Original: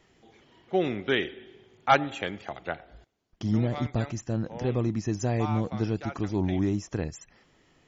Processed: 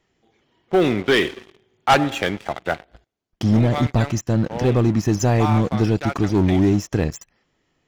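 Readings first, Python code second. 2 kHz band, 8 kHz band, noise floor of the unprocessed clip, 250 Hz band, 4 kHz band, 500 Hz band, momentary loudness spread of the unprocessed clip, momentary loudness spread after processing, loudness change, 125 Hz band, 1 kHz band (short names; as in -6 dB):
+8.0 dB, n/a, -64 dBFS, +9.5 dB, +9.5 dB, +9.0 dB, 13 LU, 9 LU, +9.0 dB, +10.0 dB, +7.0 dB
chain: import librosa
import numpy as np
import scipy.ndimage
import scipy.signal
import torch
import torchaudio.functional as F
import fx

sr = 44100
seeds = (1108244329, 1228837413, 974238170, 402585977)

y = fx.leveller(x, sr, passes=3)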